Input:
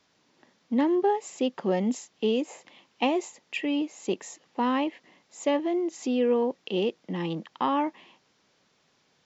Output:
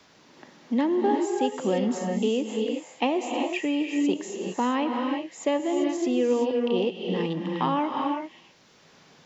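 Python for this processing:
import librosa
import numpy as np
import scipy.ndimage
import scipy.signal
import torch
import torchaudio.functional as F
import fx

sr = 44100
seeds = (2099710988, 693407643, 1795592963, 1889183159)

y = fx.rev_gated(x, sr, seeds[0], gate_ms=410, shape='rising', drr_db=3.5)
y = fx.band_squash(y, sr, depth_pct=40)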